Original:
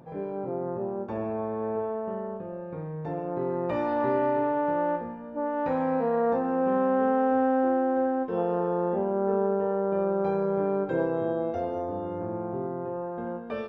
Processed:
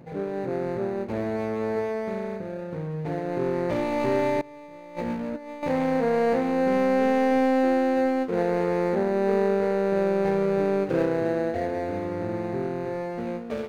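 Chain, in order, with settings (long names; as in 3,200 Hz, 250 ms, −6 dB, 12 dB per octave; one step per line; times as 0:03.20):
running median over 41 samples
0:04.41–0:05.63: compressor whose output falls as the input rises −38 dBFS, ratio −0.5
level +4.5 dB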